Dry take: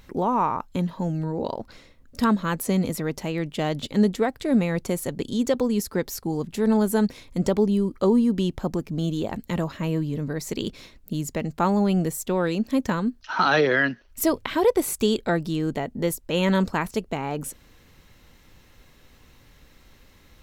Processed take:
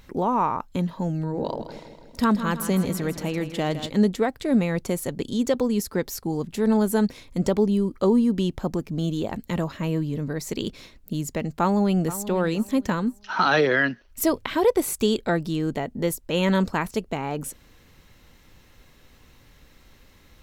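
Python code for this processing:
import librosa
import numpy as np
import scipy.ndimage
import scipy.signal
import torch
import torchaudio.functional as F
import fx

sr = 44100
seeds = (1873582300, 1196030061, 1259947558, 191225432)

y = fx.echo_feedback(x, sr, ms=161, feedback_pct=54, wet_db=-11.0, at=(1.18, 3.9))
y = fx.echo_throw(y, sr, start_s=11.5, length_s=0.77, ms=480, feedback_pct=25, wet_db=-14.0)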